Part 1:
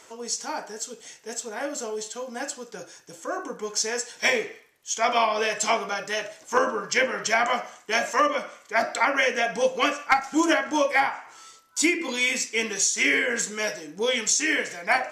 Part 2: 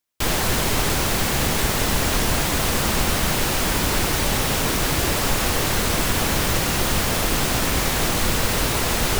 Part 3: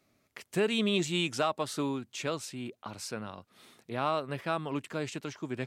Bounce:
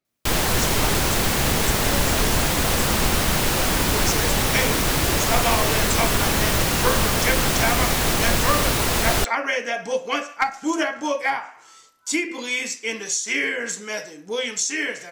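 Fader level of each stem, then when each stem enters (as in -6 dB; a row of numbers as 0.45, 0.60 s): -1.5, +0.5, -14.0 dB; 0.30, 0.05, 0.00 s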